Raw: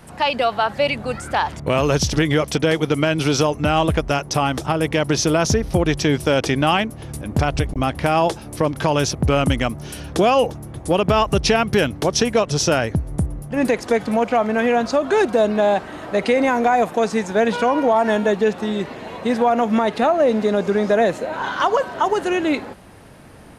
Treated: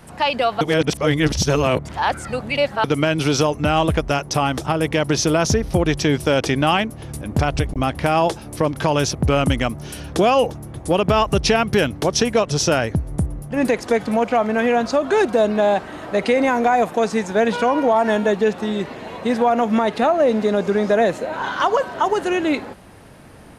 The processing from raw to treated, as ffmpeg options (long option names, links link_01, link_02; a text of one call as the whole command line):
ffmpeg -i in.wav -filter_complex "[0:a]asplit=3[link_01][link_02][link_03];[link_01]atrim=end=0.612[link_04];[link_02]atrim=start=0.608:end=2.842,asetpts=PTS-STARTPTS,areverse[link_05];[link_03]atrim=start=2.838[link_06];[link_04][link_05]acrossfade=duration=0.004:curve1=hsin:curve2=hsin[link_07];[link_07][link_06]acrossfade=duration=0.004:curve1=hsin:curve2=hsin" out.wav